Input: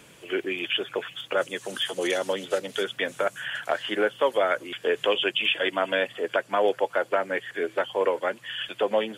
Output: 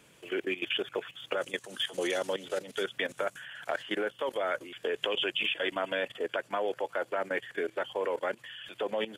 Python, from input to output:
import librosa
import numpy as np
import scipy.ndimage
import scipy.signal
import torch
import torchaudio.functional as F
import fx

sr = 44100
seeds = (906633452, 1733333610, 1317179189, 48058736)

y = fx.level_steps(x, sr, step_db=15)